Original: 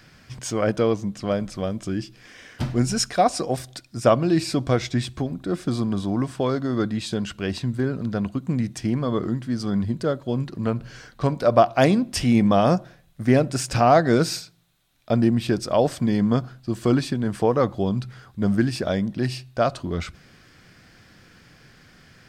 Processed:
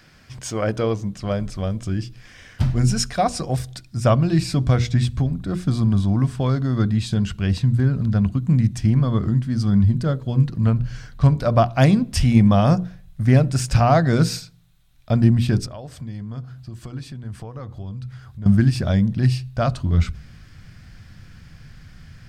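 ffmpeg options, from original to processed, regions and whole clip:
-filter_complex "[0:a]asettb=1/sr,asplit=3[s0][s1][s2];[s0]atrim=end=15.664[s3];[s1]atrim=start=15.66:end=18.46,asetpts=PTS-STARTPTS,afade=t=in:d=0.004:c=qsin,afade=t=out:st=2.796:d=0.004:c=qsin,highpass=50,acompressor=threshold=0.00631:ratio=2:attack=3.2:release=140:knee=1:detection=peak,equalizer=f=190:t=o:w=0.65:g=-5.5[s4];[s2]atrim=start=18.456[s5];[s3][s4]acrossfade=d=0.004:c1=hsin:c2=qsin[s6];[s6][s5]acrossfade=d=0.004:c1=qsin:c2=hsin,bandreject=f=60:t=h:w=6,bandreject=f=120:t=h:w=6,bandreject=f=180:t=h:w=6,bandreject=f=240:t=h:w=6,bandreject=f=300:t=h:w=6,bandreject=f=360:t=h:w=6,bandreject=f=420:t=h:w=6,bandreject=f=480:t=h:w=6,asubboost=boost=8:cutoff=130"

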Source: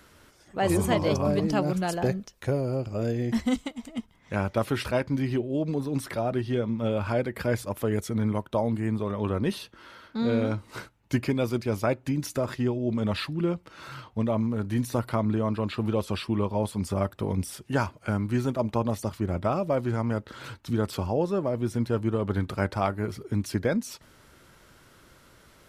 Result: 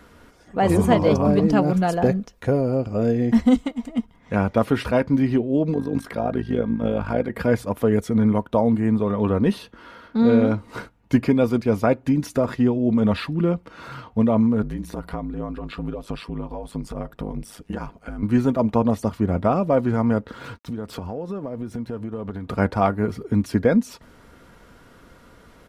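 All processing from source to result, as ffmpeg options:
-filter_complex "[0:a]asettb=1/sr,asplit=3[s0][s1][s2];[s0]atrim=end=5.744[s3];[s1]atrim=start=5.74:end=7.3,asetpts=PTS-STARTPTS,afade=t=in:d=0.004:c=qsin,afade=t=out:st=1.556:d=0.004:c=qsin,tremolo=f=52:d=0.788,aeval=exprs='val(0)+0.002*sin(2*PI*1600*n/s)':c=same[s4];[s2]atrim=start=7.296[s5];[s3][s4]acrossfade=d=0.004:c1=hsin:c2=qsin[s6];[s6][s5]acrossfade=d=0.004:c1=qsin:c2=hsin,asettb=1/sr,asplit=3[s7][s8][s9];[s7]atrim=end=14.624[s10];[s8]atrim=start=14.62:end=18.23,asetpts=PTS-STARTPTS,afade=t=in:d=0.004:c=qsin,afade=t=out:st=3.606:d=0.004:c=qsin,acompressor=threshold=0.0316:ratio=6:attack=3.2:release=140:knee=1:detection=peak,aeval=exprs='val(0)*sin(2*PI*52*n/s)':c=same[s11];[s9]atrim=start=18.226[s12];[s10][s11]acrossfade=d=0.004:c1=hsin:c2=qsin[s13];[s13][s12]acrossfade=d=0.004:c1=qsin:c2=hsin,asettb=1/sr,asplit=3[s14][s15][s16];[s14]atrim=end=20.324[s17];[s15]atrim=start=20.32:end=22.5,asetpts=PTS-STARTPTS,afade=t=in:d=0.004:c=qsin,afade=t=out:st=2.176:d=0.004:c=qsin,aeval=exprs='sgn(val(0))*max(abs(val(0))-0.00126,0)':c=same,acompressor=threshold=0.0224:ratio=10:attack=3.2:release=140:knee=1:detection=peak[s18];[s16]atrim=start=22.496[s19];[s17][s18]acrossfade=d=0.004:c1=hsin:c2=qsin[s20];[s20][s19]acrossfade=d=0.004:c1=qsin:c2=hsin,highshelf=f=2200:g=-10.5,aecho=1:1:4.2:0.35,volume=2.37"

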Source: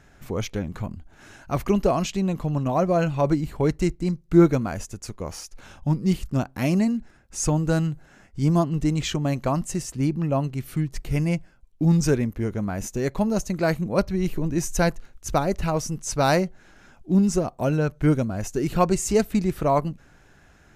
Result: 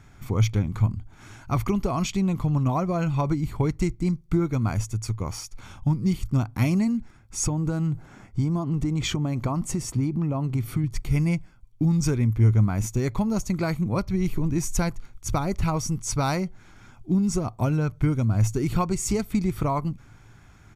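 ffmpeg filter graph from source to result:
-filter_complex "[0:a]asettb=1/sr,asplit=3[s0][s1][s2];[s0]atrim=end=7.434[s3];[s1]atrim=start=7.43:end=10.84,asetpts=PTS-STARTPTS,afade=t=in:d=0.004:c=qsin,afade=t=out:st=3.406:d=0.004:c=qsin,equalizer=f=430:w=0.37:g=7,acompressor=threshold=0.0631:ratio=4:attack=3.2:release=140:knee=1:detection=peak[s4];[s2]atrim=start=10.836[s5];[s3][s4]acrossfade=d=0.004:c1=hsin:c2=qsin[s6];[s6][s5]acrossfade=d=0.004:c1=qsin:c2=hsin,acompressor=threshold=0.0891:ratio=6,equalizer=f=110:t=o:w=0.24:g=13,aecho=1:1:0.9:0.45"

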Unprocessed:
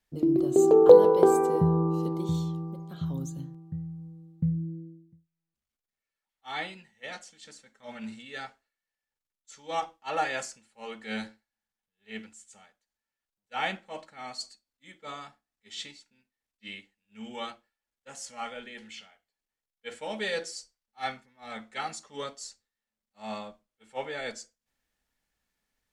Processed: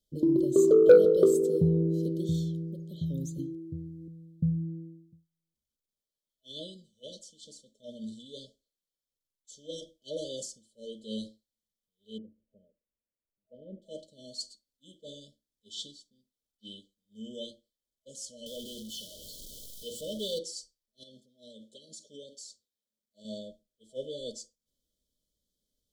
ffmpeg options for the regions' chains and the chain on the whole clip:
-filter_complex "[0:a]asettb=1/sr,asplit=3[s0][s1][s2];[s0]atrim=end=3.384[s3];[s1]atrim=start=3.38:end=4.08,asetpts=PTS-STARTPTS,afade=t=in:d=0.004:c=qsin,afade=t=out:st=0.696:d=0.004:c=qsin,highpass=51,equalizer=f=310:t=o:w=0.47:g=12.5,aecho=1:1:2.5:0.8,atrim=end_sample=30870[s4];[s2]atrim=start=4.076[s5];[s3][s4]acrossfade=d=0.004:c1=hsin:c2=qsin[s6];[s6][s5]acrossfade=d=0.004:c1=qsin:c2=hsin,asettb=1/sr,asplit=3[s7][s8][s9];[s7]atrim=end=12.184[s10];[s8]atrim=start=12.18:end=13.82,asetpts=PTS-STARTPTS,afade=t=in:d=0.004:c=qsin,afade=t=out:st=1.636:d=0.004:c=qsin,lowpass=f=1300:w=0.5412,lowpass=f=1300:w=1.3066,acompressor=threshold=0.0126:ratio=3:attack=3.2:release=140:knee=1:detection=peak[s11];[s9]atrim=start=13.816[s12];[s10][s11]acrossfade=d=0.004:c1=hsin:c2=qsin[s13];[s13][s12]acrossfade=d=0.004:c1=qsin:c2=hsin,asettb=1/sr,asplit=3[s14][s15][s16];[s14]atrim=end=18.464[s17];[s15]atrim=start=18.46:end=20.39,asetpts=PTS-STARTPTS,afade=t=in:d=0.004:c=qsin,afade=t=out:st=1.926:d=0.004:c=qsin,aeval=exprs='val(0)+0.5*0.0141*sgn(val(0))':c=same,equalizer=f=420:w=0.65:g=-3[s18];[s16]atrim=start=20.386[s19];[s17][s18]acrossfade=d=0.004:c1=hsin:c2=qsin[s20];[s20][s19]acrossfade=d=0.004:c1=qsin:c2=hsin,asettb=1/sr,asplit=3[s21][s22][s23];[s21]atrim=end=21.034[s24];[s22]atrim=start=21.03:end=23.25,asetpts=PTS-STARTPTS,afade=t=in:d=0.004:c=qsin,afade=t=out:st=2.216:d=0.004:c=qsin,highpass=f=160:p=1,acompressor=threshold=0.00891:ratio=8:attack=3.2:release=140:knee=1:detection=peak[s25];[s23]atrim=start=23.246[s26];[s24][s25]acrossfade=d=0.004:c1=hsin:c2=qsin[s27];[s27][s26]acrossfade=d=0.004:c1=qsin:c2=hsin,afftfilt=real='re*(1-between(b*sr/4096,640,3000))':imag='im*(1-between(b*sr/4096,640,3000))':win_size=4096:overlap=0.75,acontrast=37,volume=0.501"

